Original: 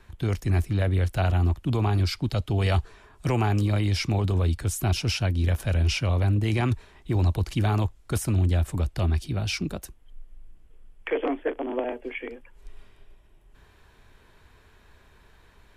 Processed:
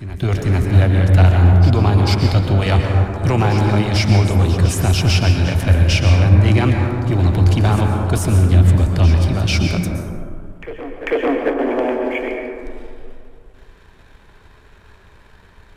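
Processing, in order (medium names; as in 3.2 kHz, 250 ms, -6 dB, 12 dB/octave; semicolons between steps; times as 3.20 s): treble shelf 11 kHz -9 dB; waveshaping leveller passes 1; reverse echo 444 ms -13 dB; plate-style reverb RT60 2.3 s, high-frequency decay 0.3×, pre-delay 105 ms, DRR 2 dB; trim +5.5 dB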